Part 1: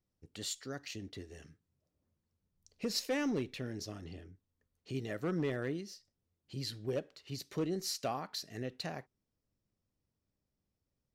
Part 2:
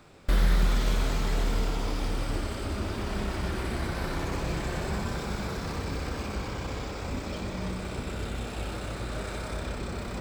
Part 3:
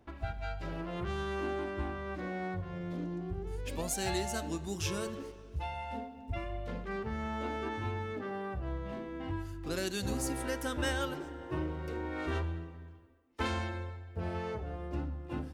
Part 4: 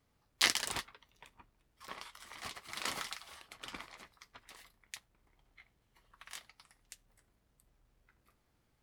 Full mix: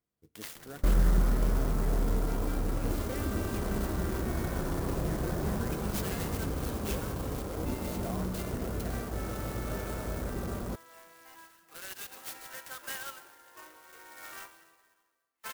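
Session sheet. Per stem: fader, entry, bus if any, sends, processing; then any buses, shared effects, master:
-1.0 dB, 0.00 s, no send, echo send -8 dB, de-esser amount 100%; ripple EQ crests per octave 1.8, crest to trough 7 dB; compressor, threshold -36 dBFS, peak gain reduction 8.5 dB
-2.5 dB, 0.55 s, no send, no echo send, LPF 2000 Hz 24 dB/oct; tilt -2.5 dB/oct
-1.5 dB, 2.05 s, no send, no echo send, HPF 1200 Hz 12 dB/oct
-17.5 dB, 0.00 s, no send, no echo send, dry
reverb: off
echo: feedback echo 0.556 s, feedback 49%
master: low shelf 110 Hz -12 dB; notch 860 Hz, Q 23; clock jitter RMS 0.067 ms

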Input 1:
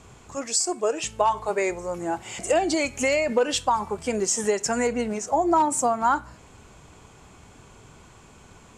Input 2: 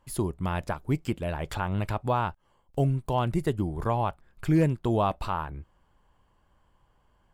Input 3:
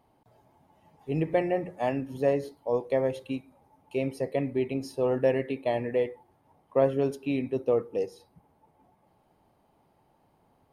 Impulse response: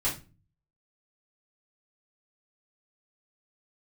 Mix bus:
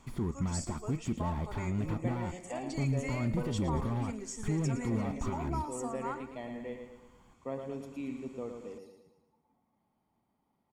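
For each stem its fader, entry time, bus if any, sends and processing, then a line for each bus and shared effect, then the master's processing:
-11.0 dB, 0.00 s, no send, echo send -21 dB, auto duck -8 dB, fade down 0.60 s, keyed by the second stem
+3.0 dB, 0.00 s, no send, no echo send, limiter -28 dBFS, peak gain reduction 14 dB; slew limiter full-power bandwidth 5.8 Hz
-14.0 dB, 0.70 s, no send, echo send -6.5 dB, dry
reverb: off
echo: feedback echo 0.113 s, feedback 47%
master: low shelf 190 Hz -3 dB; comb 0.9 ms, depth 33%; small resonant body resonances 230/1900 Hz, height 8 dB

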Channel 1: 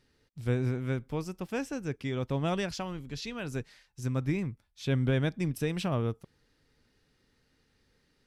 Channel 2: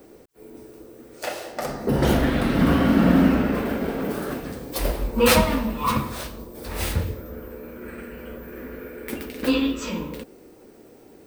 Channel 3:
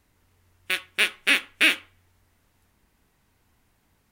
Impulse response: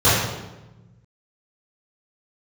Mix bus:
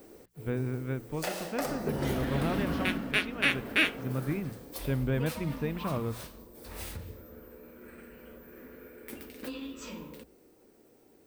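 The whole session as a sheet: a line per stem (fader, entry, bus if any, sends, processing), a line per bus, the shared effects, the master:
-2.0 dB, 0.00 s, no send, LPF 2600 Hz 12 dB/oct
2.84 s -4.5 dB -> 3.18 s -12.5 dB, 0.00 s, no send, high shelf 6200 Hz +5 dB; compressor 16:1, threshold -23 dBFS, peak gain reduction 13 dB; short-mantissa float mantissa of 4-bit
-1.5 dB, 2.15 s, no send, high shelf 2600 Hz -11 dB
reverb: off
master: notches 60/120/180 Hz

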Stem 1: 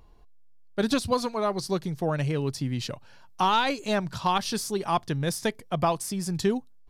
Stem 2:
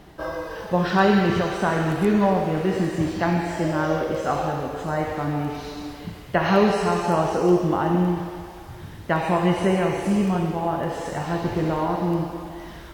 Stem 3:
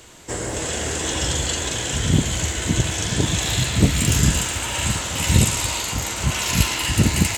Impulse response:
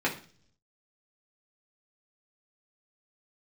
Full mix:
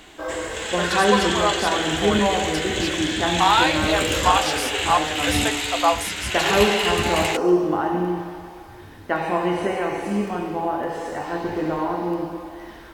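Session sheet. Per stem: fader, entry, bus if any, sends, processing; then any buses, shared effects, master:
+1.0 dB, 0.00 s, send -9 dB, HPF 570 Hz 24 dB/oct
-4.5 dB, 0.00 s, send -11 dB, dry
-8.0 dB, 0.00 s, no send, band shelf 2400 Hz +10 dB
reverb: on, RT60 0.45 s, pre-delay 3 ms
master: bell 140 Hz -11 dB 0.72 oct

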